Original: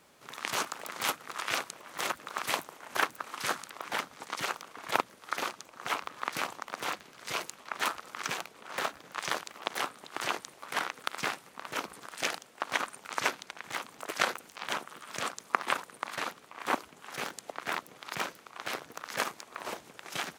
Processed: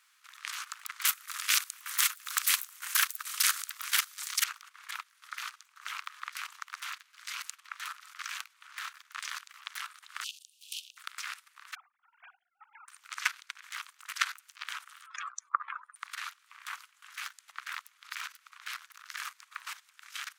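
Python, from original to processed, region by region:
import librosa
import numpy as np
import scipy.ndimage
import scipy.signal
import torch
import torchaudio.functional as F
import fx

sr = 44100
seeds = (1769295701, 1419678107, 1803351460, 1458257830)

y = fx.chain(x, sr, fx.riaa(side='recording'),
    fx.band_squash(depth_pct=70), at=(1.05, 4.44))
y = fx.chain(y, sr, fx.steep_highpass(hz=2700.0, slope=96),
    fx.band_squash(depth_pct=100), at=(10.24, 10.97))
y = fx.chain(y, sr, fx.sine_speech(),
    fx.double_bandpass(hz=570.0, octaves=0.74), at=(11.75, 12.88))
y = fx.chain(y, sr, fx.spec_expand(power=2.9),
    fx.low_shelf_res(hz=420.0, db=-11.0, q=1.5), at=(15.06, 15.96))
y = scipy.signal.sosfilt(scipy.signal.butter(6, 1200.0, 'highpass', fs=sr, output='sos'), y)
y = fx.level_steps(y, sr, step_db=14)
y = y * librosa.db_to_amplitude(3.0)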